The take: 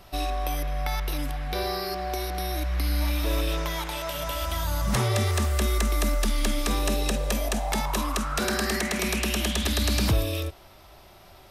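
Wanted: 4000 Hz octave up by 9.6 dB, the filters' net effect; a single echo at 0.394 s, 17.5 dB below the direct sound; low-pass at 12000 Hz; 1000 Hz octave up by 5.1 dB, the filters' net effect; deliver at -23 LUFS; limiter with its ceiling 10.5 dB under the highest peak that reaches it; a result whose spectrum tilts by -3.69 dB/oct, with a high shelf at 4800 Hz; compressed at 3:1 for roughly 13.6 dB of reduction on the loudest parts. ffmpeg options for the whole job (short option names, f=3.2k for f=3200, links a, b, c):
-af "lowpass=12k,equalizer=f=1k:t=o:g=6,equalizer=f=4k:t=o:g=8,highshelf=f=4.8k:g=7,acompressor=threshold=-37dB:ratio=3,alimiter=level_in=5.5dB:limit=-24dB:level=0:latency=1,volume=-5.5dB,aecho=1:1:394:0.133,volume=15.5dB"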